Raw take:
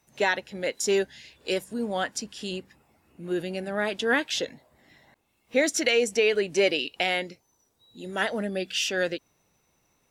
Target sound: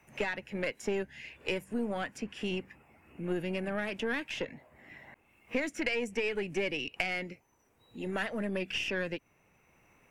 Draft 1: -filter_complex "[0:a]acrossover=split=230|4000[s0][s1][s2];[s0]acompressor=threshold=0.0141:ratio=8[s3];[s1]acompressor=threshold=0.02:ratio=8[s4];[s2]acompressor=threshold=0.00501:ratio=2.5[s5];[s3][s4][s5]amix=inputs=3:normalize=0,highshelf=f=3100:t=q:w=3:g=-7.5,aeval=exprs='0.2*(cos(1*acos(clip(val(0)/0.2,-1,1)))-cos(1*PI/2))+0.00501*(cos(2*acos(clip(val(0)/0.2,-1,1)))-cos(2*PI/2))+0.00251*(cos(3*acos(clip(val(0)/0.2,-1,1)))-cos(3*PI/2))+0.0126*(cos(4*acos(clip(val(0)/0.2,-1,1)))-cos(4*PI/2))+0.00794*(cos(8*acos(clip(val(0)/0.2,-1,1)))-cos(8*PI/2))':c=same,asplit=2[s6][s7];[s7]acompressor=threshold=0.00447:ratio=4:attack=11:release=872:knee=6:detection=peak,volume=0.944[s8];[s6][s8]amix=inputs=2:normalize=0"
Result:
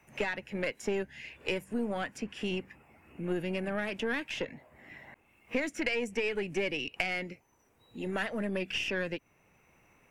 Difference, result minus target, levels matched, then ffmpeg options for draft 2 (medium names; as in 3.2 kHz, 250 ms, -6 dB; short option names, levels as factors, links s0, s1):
compression: peak gain reduction -5 dB
-filter_complex "[0:a]acrossover=split=230|4000[s0][s1][s2];[s0]acompressor=threshold=0.0141:ratio=8[s3];[s1]acompressor=threshold=0.02:ratio=8[s4];[s2]acompressor=threshold=0.00501:ratio=2.5[s5];[s3][s4][s5]amix=inputs=3:normalize=0,highshelf=f=3100:t=q:w=3:g=-7.5,aeval=exprs='0.2*(cos(1*acos(clip(val(0)/0.2,-1,1)))-cos(1*PI/2))+0.00501*(cos(2*acos(clip(val(0)/0.2,-1,1)))-cos(2*PI/2))+0.00251*(cos(3*acos(clip(val(0)/0.2,-1,1)))-cos(3*PI/2))+0.0126*(cos(4*acos(clip(val(0)/0.2,-1,1)))-cos(4*PI/2))+0.00794*(cos(8*acos(clip(val(0)/0.2,-1,1)))-cos(8*PI/2))':c=same,asplit=2[s6][s7];[s7]acompressor=threshold=0.00211:ratio=4:attack=11:release=872:knee=6:detection=peak,volume=0.944[s8];[s6][s8]amix=inputs=2:normalize=0"